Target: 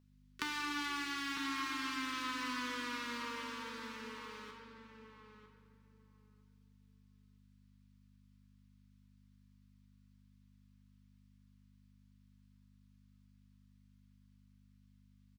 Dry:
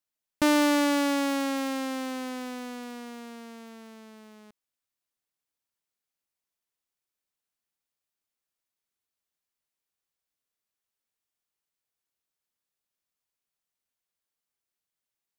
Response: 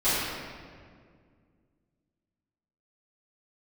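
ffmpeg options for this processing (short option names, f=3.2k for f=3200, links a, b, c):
-filter_complex "[0:a]acompressor=threshold=-36dB:ratio=16,asuperstop=centerf=650:order=12:qfactor=1.5,acrossover=split=500 5600:gain=0.224 1 0.224[a][b][c];[a][b][c]amix=inputs=3:normalize=0,asplit=2[d][e];[e]asetrate=55563,aresample=44100,atempo=0.793701,volume=-16dB[f];[d][f]amix=inputs=2:normalize=0,aeval=exprs='val(0)+0.000562*(sin(2*PI*50*n/s)+sin(2*PI*2*50*n/s)/2+sin(2*PI*3*50*n/s)/3+sin(2*PI*4*50*n/s)/4+sin(2*PI*5*50*n/s)/5)':c=same,lowshelf=f=140:g=-9,asplit=2[g][h];[h]adelay=950,lowpass=f=1.5k:p=1,volume=-7dB,asplit=2[i][j];[j]adelay=950,lowpass=f=1.5k:p=1,volume=0.18,asplit=2[k][l];[l]adelay=950,lowpass=f=1.5k:p=1,volume=0.18[m];[g][i][k][m]amix=inputs=4:normalize=0,asplit=2[n][o];[1:a]atrim=start_sample=2205,highshelf=f=3.5k:g=10.5[p];[o][p]afir=irnorm=-1:irlink=0,volume=-20dB[q];[n][q]amix=inputs=2:normalize=0,volume=4dB"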